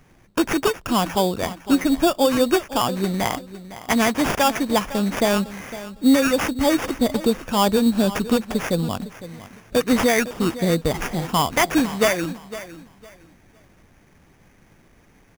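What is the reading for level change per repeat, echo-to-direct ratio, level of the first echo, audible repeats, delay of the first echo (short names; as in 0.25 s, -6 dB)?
-12.5 dB, -14.5 dB, -15.0 dB, 2, 0.507 s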